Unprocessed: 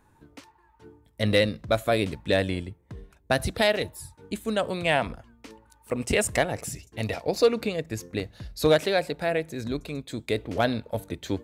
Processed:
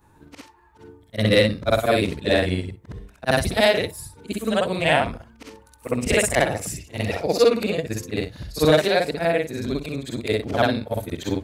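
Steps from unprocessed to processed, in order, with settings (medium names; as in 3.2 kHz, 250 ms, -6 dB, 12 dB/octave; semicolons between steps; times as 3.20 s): short-time spectra conjugated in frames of 131 ms; trim +8 dB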